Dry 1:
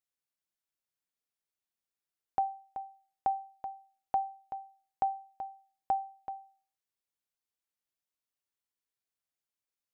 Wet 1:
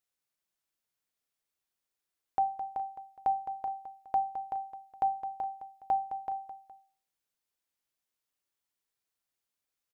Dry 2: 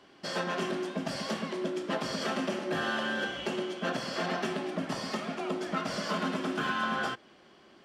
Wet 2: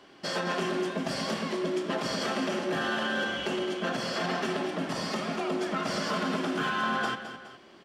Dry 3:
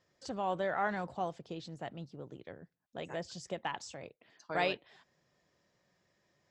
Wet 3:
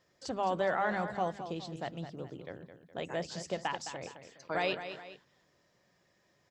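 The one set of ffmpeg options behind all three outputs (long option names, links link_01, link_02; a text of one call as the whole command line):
ffmpeg -i in.wav -filter_complex "[0:a]bandreject=frequency=50:width_type=h:width=6,bandreject=frequency=100:width_type=h:width=6,bandreject=frequency=150:width_type=h:width=6,bandreject=frequency=200:width_type=h:width=6,bandreject=frequency=250:width_type=h:width=6,alimiter=level_in=0.5dB:limit=-24dB:level=0:latency=1:release=38,volume=-0.5dB,asplit=2[link_01][link_02];[link_02]aecho=0:1:213|416:0.299|0.133[link_03];[link_01][link_03]amix=inputs=2:normalize=0,volume=3.5dB" out.wav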